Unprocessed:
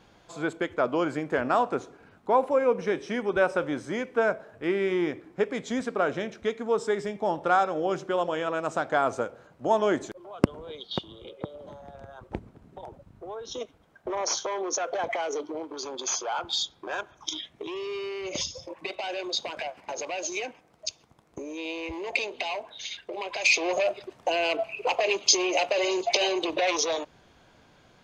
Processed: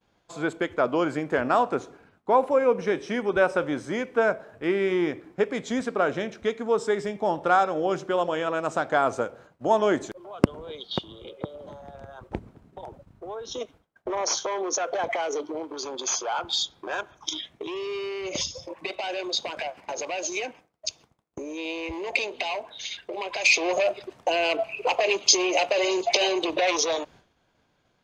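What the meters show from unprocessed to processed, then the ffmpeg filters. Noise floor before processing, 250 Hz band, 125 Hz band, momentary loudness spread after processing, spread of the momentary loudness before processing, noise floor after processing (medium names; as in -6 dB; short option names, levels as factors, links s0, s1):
-59 dBFS, +2.0 dB, +2.0 dB, 16 LU, 16 LU, -69 dBFS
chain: -af "agate=range=0.0224:threshold=0.00398:ratio=3:detection=peak,volume=1.26"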